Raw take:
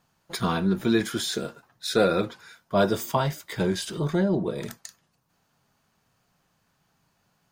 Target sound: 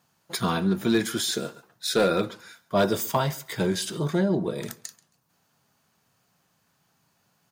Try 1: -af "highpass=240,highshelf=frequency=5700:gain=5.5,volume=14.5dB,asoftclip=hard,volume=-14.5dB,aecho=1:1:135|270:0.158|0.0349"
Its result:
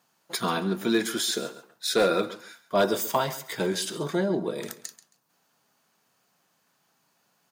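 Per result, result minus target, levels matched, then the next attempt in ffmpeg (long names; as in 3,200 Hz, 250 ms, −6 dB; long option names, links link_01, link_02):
125 Hz band −5.5 dB; echo-to-direct +7 dB
-af "highpass=84,highshelf=frequency=5700:gain=5.5,volume=14.5dB,asoftclip=hard,volume=-14.5dB,aecho=1:1:135|270:0.158|0.0349"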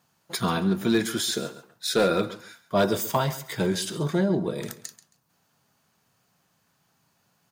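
echo-to-direct +7 dB
-af "highpass=84,highshelf=frequency=5700:gain=5.5,volume=14.5dB,asoftclip=hard,volume=-14.5dB,aecho=1:1:135|270:0.0708|0.0156"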